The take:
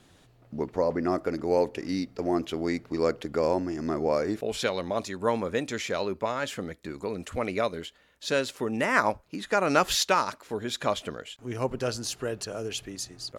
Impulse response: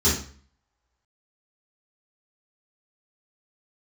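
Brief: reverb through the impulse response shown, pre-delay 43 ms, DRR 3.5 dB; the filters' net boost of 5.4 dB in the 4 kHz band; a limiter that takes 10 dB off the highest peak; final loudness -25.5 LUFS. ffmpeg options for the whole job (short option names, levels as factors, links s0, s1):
-filter_complex "[0:a]equalizer=f=4000:t=o:g=6.5,alimiter=limit=0.141:level=0:latency=1,asplit=2[s0][s1];[1:a]atrim=start_sample=2205,adelay=43[s2];[s1][s2]afir=irnorm=-1:irlink=0,volume=0.119[s3];[s0][s3]amix=inputs=2:normalize=0,volume=1.12"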